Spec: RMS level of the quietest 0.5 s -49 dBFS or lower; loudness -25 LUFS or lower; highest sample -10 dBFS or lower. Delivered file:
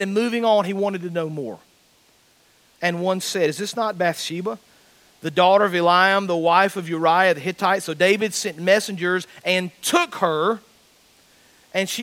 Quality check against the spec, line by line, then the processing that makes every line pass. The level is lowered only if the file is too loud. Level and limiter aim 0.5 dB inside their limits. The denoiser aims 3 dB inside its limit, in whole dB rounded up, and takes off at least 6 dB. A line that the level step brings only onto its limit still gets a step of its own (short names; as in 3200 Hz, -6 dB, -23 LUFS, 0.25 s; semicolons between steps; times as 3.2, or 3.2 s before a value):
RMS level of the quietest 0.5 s -58 dBFS: OK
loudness -20.5 LUFS: fail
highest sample -2.0 dBFS: fail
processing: gain -5 dB; limiter -10.5 dBFS